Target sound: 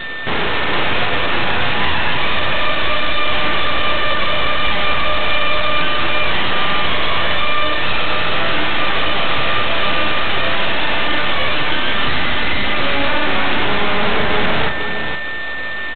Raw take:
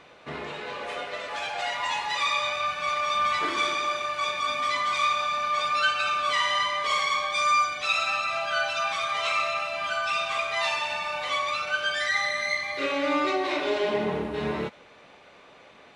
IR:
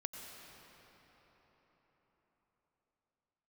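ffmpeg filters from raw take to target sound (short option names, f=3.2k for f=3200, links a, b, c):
-filter_complex "[0:a]asettb=1/sr,asplit=3[a][b][c];[a]atrim=end=1.094[d];[b]atrim=start=1.09:end=2.31,asetpts=PTS-STARTPTS,afade=t=in:d=0.004:c=qsin,afade=t=out:st=1.216:d=0.004:c=qsin,equalizer=f=2.3k:t=o:w=0.65:g=-11.5[e];[c]atrim=start=2.306[f];[d][e]acrossfade=d=0.004:c1=hsin:c2=qsin[g];[g][f]acrossfade=d=0.004:c1=qsin:c2=hsin,asettb=1/sr,asplit=3[h][i][j];[h]atrim=end=2.964[k];[i]atrim=start=2.96:end=3.47,asetpts=PTS-STARTPTS,afade=t=in:d=0.004:c=qsin,afade=t=out:st=0.506:d=0.004:c=qsin,bandreject=f=60:t=h:w=6,bandreject=f=120:t=h:w=6,bandreject=f=180:t=h:w=6,bandreject=f=240:t=h:w=6,bandreject=f=300:t=h:w=6,bandreject=f=360:t=h:w=6[l];[j]atrim=start=3.466[m];[k][l]acrossfade=d=0.004:c1=hsin:c2=qsin[n];[n][m]acrossfade=d=0.004:c1=qsin:c2=hsin,asettb=1/sr,asplit=3[o][p][q];[o]atrim=end=11.034[r];[p]atrim=start=11.03:end=11.7,asetpts=PTS-STARTPTS,afade=t=in:d=0.004:c=qsin,afade=t=out:st=0.666:d=0.004:c=qsin,highpass=f=260:w=0.5412,highpass=f=260:w=1.3066[s];[q]atrim=start=11.696[t];[r][s]acrossfade=d=0.004:c1=hsin:c2=qsin[u];[u][t]acrossfade=d=0.004:c1=qsin:c2=hsin,acompressor=threshold=-31dB:ratio=6,aeval=exprs='val(0)+0.01*sin(2*PI*1800*n/s)':c=same,aeval=exprs='0.0891*(cos(1*acos(clip(val(0)/0.0891,-1,1)))-cos(1*PI/2))+0.0447*(cos(6*acos(clip(val(0)/0.0891,-1,1)))-cos(6*PI/2))':c=same,aeval=exprs='0.141*sin(PI/2*1.58*val(0)/0.141)':c=same,asplit=2[v][w];[w]adelay=36,volume=-8.5dB[x];[v][x]amix=inputs=2:normalize=0,asplit=2[y][z];[z]aecho=0:1:466:0.447[aa];[y][aa]amix=inputs=2:normalize=0,volume=7dB" -ar 8000 -c:a adpcm_g726 -b:a 16k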